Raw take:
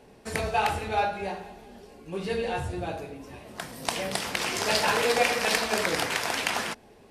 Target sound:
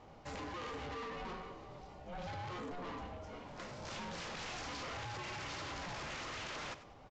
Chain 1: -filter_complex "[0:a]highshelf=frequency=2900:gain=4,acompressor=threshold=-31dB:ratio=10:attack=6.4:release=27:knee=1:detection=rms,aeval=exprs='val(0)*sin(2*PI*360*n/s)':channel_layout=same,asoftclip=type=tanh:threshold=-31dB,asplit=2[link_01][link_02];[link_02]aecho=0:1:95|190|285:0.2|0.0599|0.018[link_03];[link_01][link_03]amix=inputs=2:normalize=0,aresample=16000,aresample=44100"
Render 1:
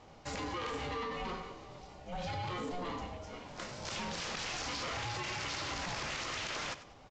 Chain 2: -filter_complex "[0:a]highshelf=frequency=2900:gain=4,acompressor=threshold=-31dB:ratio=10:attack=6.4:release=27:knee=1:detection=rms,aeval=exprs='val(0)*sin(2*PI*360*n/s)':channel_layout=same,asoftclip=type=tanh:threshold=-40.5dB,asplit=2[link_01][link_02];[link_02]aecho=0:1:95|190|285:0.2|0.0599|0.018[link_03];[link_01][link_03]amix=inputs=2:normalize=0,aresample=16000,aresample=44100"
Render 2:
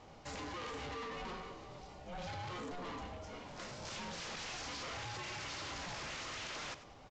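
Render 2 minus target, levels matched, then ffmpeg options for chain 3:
8,000 Hz band +3.5 dB
-filter_complex "[0:a]highshelf=frequency=2900:gain=-4.5,acompressor=threshold=-31dB:ratio=10:attack=6.4:release=27:knee=1:detection=rms,aeval=exprs='val(0)*sin(2*PI*360*n/s)':channel_layout=same,asoftclip=type=tanh:threshold=-40.5dB,asplit=2[link_01][link_02];[link_02]aecho=0:1:95|190|285:0.2|0.0599|0.018[link_03];[link_01][link_03]amix=inputs=2:normalize=0,aresample=16000,aresample=44100"

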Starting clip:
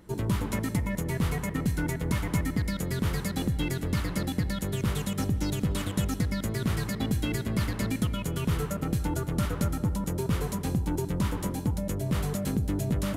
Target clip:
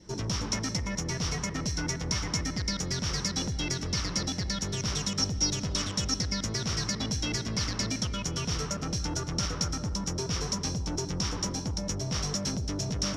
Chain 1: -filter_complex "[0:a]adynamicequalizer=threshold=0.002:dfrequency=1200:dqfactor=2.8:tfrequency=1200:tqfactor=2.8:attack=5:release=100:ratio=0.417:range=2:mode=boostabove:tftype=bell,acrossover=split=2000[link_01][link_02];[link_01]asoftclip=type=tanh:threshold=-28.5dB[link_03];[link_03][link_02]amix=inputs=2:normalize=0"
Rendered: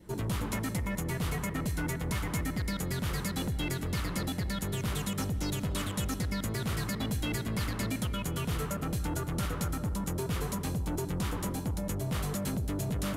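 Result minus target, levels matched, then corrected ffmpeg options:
4,000 Hz band −7.0 dB
-filter_complex "[0:a]adynamicequalizer=threshold=0.002:dfrequency=1200:dqfactor=2.8:tfrequency=1200:tqfactor=2.8:attack=5:release=100:ratio=0.417:range=2:mode=boostabove:tftype=bell,lowpass=frequency=5600:width_type=q:width=14,acrossover=split=2000[link_01][link_02];[link_01]asoftclip=type=tanh:threshold=-28.5dB[link_03];[link_03][link_02]amix=inputs=2:normalize=0"

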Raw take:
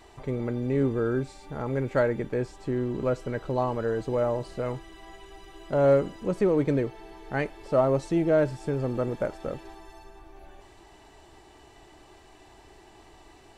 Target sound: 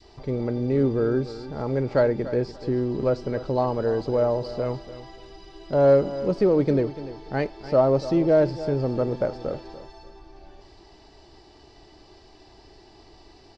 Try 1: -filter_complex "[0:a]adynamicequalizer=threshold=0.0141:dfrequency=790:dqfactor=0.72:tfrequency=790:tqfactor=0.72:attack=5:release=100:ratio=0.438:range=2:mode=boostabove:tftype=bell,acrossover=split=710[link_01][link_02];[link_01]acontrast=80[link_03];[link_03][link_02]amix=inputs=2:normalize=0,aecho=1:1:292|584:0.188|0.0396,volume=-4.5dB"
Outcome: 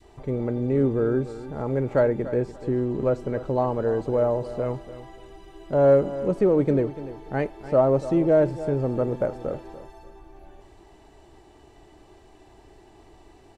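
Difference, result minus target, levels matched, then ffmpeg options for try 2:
4,000 Hz band −9.0 dB
-filter_complex "[0:a]adynamicequalizer=threshold=0.0141:dfrequency=790:dqfactor=0.72:tfrequency=790:tqfactor=0.72:attack=5:release=100:ratio=0.438:range=2:mode=boostabove:tftype=bell,lowpass=frequency=4900:width_type=q:width=6.9,acrossover=split=710[link_01][link_02];[link_01]acontrast=80[link_03];[link_03][link_02]amix=inputs=2:normalize=0,aecho=1:1:292|584:0.188|0.0396,volume=-4.5dB"

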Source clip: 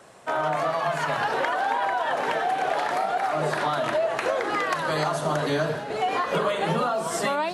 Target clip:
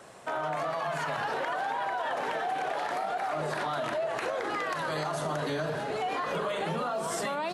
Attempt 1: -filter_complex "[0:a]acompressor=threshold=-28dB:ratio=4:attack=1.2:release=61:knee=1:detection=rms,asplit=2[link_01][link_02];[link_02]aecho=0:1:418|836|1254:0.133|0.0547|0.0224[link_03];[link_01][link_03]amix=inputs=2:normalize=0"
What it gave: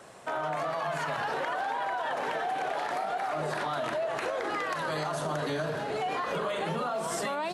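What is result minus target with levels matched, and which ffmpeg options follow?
echo 207 ms early
-filter_complex "[0:a]acompressor=threshold=-28dB:ratio=4:attack=1.2:release=61:knee=1:detection=rms,asplit=2[link_01][link_02];[link_02]aecho=0:1:625|1250|1875:0.133|0.0547|0.0224[link_03];[link_01][link_03]amix=inputs=2:normalize=0"

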